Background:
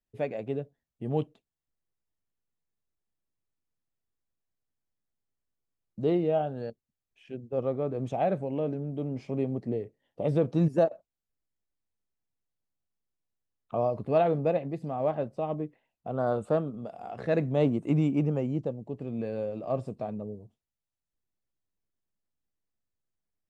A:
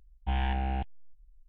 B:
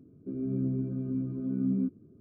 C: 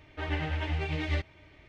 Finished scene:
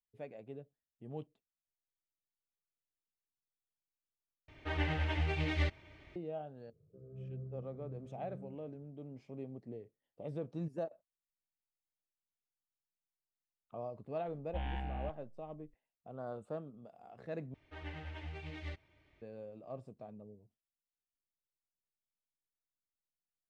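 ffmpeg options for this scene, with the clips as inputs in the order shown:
-filter_complex "[3:a]asplit=2[a][b];[0:a]volume=-15.5dB[c];[2:a]firequalizer=gain_entry='entry(160,0);entry(240,-27);entry(480,7);entry(800,-7);entry(1300,-3);entry(2000,-18)':delay=0.05:min_phase=1[d];[c]asplit=3[e][f][g];[e]atrim=end=4.484[h];[a]atrim=end=1.68,asetpts=PTS-STARTPTS,volume=-2.5dB[i];[f]atrim=start=6.156:end=17.544[j];[b]atrim=end=1.68,asetpts=PTS-STARTPTS,volume=-14dB[k];[g]atrim=start=19.216[l];[d]atrim=end=2.2,asetpts=PTS-STARTPTS,volume=-10.5dB,afade=t=in:d=0.004:c=hsin,afade=t=out:st=2.196:d=0.004:c=hsin,adelay=6670[m];[1:a]atrim=end=1.48,asetpts=PTS-STARTPTS,volume=-10dB,afade=t=in:d=0.004:c=hsin,afade=t=out:st=1.476:d=0.004:c=hsin,adelay=14270[n];[h][i]acrossfade=d=0.004:c1=hsin:c2=hsin[o];[o][j]acrossfade=d=0.004:c1=hsin:c2=hsin[p];[p][k]acrossfade=d=0.004:c1=hsin:c2=hsin[q];[q][l]acrossfade=d=0.004:c1=hsin:c2=hsin[r];[r][m][n]amix=inputs=3:normalize=0"

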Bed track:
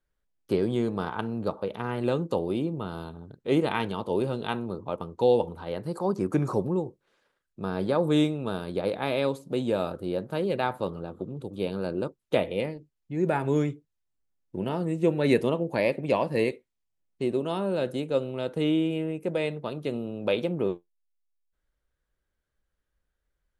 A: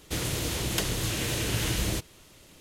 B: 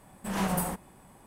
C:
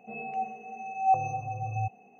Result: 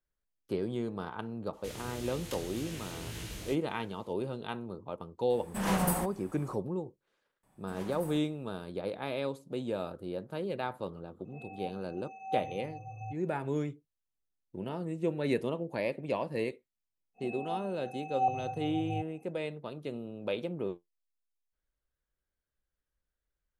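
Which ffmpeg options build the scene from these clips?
-filter_complex "[2:a]asplit=2[a][b];[3:a]asplit=2[c][d];[0:a]volume=-8dB[e];[1:a]flanger=delay=17.5:depth=5.6:speed=1.8[f];[b]alimiter=limit=-21.5dB:level=0:latency=1:release=24[g];[f]atrim=end=2.6,asetpts=PTS-STARTPTS,volume=-11dB,afade=t=in:d=0.004:c=hsin,afade=t=out:st=2.596:d=0.004:c=hsin,adelay=1530[h];[a]atrim=end=1.26,asetpts=PTS-STARTPTS,afade=t=in:d=0.004:c=hsin,afade=t=out:st=1.256:d=0.004:c=hsin,adelay=5300[i];[g]atrim=end=1.26,asetpts=PTS-STARTPTS,volume=-15dB,afade=t=in:d=0.004:c=hsin,afade=t=out:st=1.256:d=0.004:c=hsin,adelay=7430[j];[c]atrim=end=2.19,asetpts=PTS-STARTPTS,volume=-11dB,afade=t=in:d=0.004:c=hsin,afade=t=out:st=2.186:d=0.004:c=hsin,adelay=11250[k];[d]atrim=end=2.19,asetpts=PTS-STARTPTS,volume=-5.5dB,afade=t=in:d=0.05,afade=t=out:st=2.14:d=0.05,adelay=17140[l];[e][h][i][j][k][l]amix=inputs=6:normalize=0"

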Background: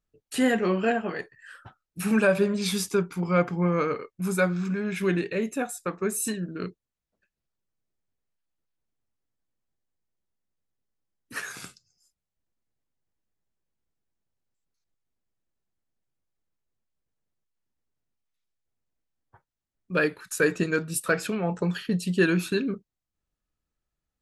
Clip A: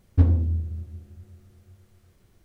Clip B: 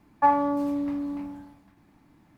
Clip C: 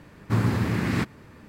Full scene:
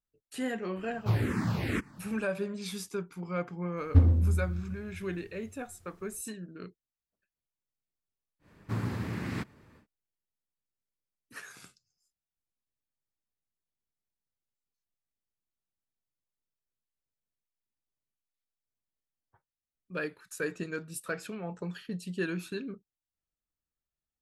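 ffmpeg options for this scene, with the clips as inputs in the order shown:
-filter_complex "[3:a]asplit=2[a][b];[0:a]volume=-11dB[c];[a]asplit=2[d][e];[e]afreqshift=-2.1[f];[d][f]amix=inputs=2:normalize=1[g];[1:a]asplit=2[h][i];[i]adelay=122.4,volume=-15dB,highshelf=f=4k:g=-2.76[j];[h][j]amix=inputs=2:normalize=0[k];[g]atrim=end=1.48,asetpts=PTS-STARTPTS,volume=-2.5dB,afade=t=in:d=0.004:c=hsin,afade=t=out:st=1.476:d=0.004:c=hsin,adelay=760[l];[k]atrim=end=2.44,asetpts=PTS-STARTPTS,volume=-2.5dB,afade=t=in:d=0.004:c=hsin,afade=t=out:st=2.436:d=0.004:c=hsin,adelay=166257S[m];[b]atrim=end=1.48,asetpts=PTS-STARTPTS,volume=-10dB,afade=t=in:d=0.1,afade=t=out:st=1.38:d=0.1,adelay=8390[n];[c][l][m][n]amix=inputs=4:normalize=0"

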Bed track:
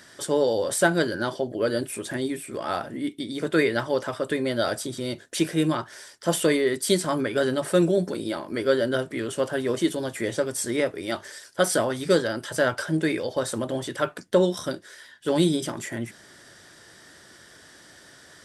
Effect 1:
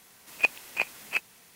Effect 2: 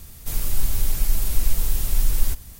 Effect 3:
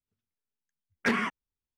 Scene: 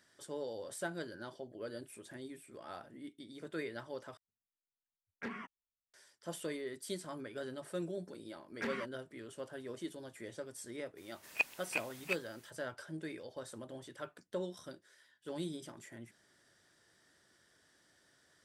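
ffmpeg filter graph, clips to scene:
-filter_complex "[3:a]asplit=2[a][b];[0:a]volume=-19.5dB[c];[a]highshelf=f=3.4k:g=-9.5[d];[c]asplit=2[e][f];[e]atrim=end=4.174[g];[d]atrim=end=1.77,asetpts=PTS-STARTPTS,volume=-15.5dB[h];[f]atrim=start=5.936[i];[b]atrim=end=1.77,asetpts=PTS-STARTPTS,volume=-13.5dB,afade=t=in:d=0.004:c=hsin,afade=t=out:st=1.766:d=0.004:c=hsin,adelay=7560[j];[1:a]atrim=end=1.55,asetpts=PTS-STARTPTS,volume=-9dB,afade=t=in:d=0.02,afade=t=out:st=1.53:d=0.02,adelay=10960[k];[g][h]acrossfade=d=0.004:c1=hsin:c2=hsin[l];[l][i]acrossfade=d=0.004:c1=hsin:c2=hsin[m];[m][j][k]amix=inputs=3:normalize=0"

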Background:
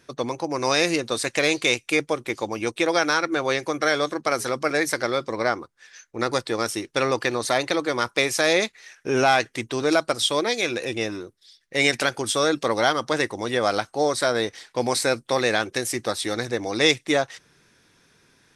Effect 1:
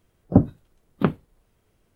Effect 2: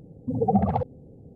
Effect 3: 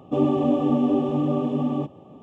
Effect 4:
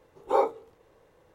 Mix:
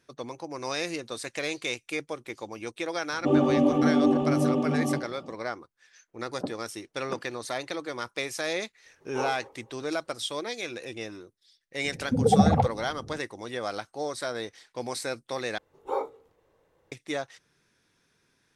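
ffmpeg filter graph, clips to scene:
-filter_complex "[4:a]asplit=2[a][b];[0:a]volume=-10.5dB[c];[3:a]asplit=2[d][e];[e]adelay=90,highpass=300,lowpass=3.4k,asoftclip=type=hard:threshold=-18dB,volume=-8dB[f];[d][f]amix=inputs=2:normalize=0[g];[1:a]highpass=350,lowpass=2.1k[h];[a]asplit=2[i][j];[j]adelay=219,lowpass=f=2k:p=1,volume=-20.5dB,asplit=2[k][l];[l]adelay=219,lowpass=f=2k:p=1,volume=0.28[m];[i][k][m]amix=inputs=3:normalize=0[n];[2:a]acontrast=63[o];[c]asplit=2[p][q];[p]atrim=end=15.584[r];[b]atrim=end=1.34,asetpts=PTS-STARTPTS,volume=-6.5dB[s];[q]atrim=start=16.916[t];[g]atrim=end=2.22,asetpts=PTS-STARTPTS,volume=-1.5dB,afade=t=in:d=0.004:c=hsin,afade=t=out:st=2.216:d=0.004:c=hsin,adelay=138033S[u];[h]atrim=end=1.95,asetpts=PTS-STARTPTS,volume=-11.5dB,afade=t=in:d=0.004:c=hsin,afade=t=out:st=1.946:d=0.004:c=hsin,adelay=6080[v];[n]atrim=end=1.34,asetpts=PTS-STARTPTS,volume=-8.5dB,afade=t=in:d=0.004:c=hsin,afade=t=out:st=1.336:d=0.004:c=hsin,adelay=8850[w];[o]atrim=end=1.35,asetpts=PTS-STARTPTS,volume=-3.5dB,afade=t=in:d=0.004:c=hsin,afade=t=out:st=1.346:d=0.004:c=hsin,adelay=11840[x];[r][s]acrossfade=d=0.004:c1=hsin:c2=hsin[y];[y][t]acrossfade=d=0.004:c1=hsin:c2=hsin[z];[z][u][v][w][x]amix=inputs=5:normalize=0"

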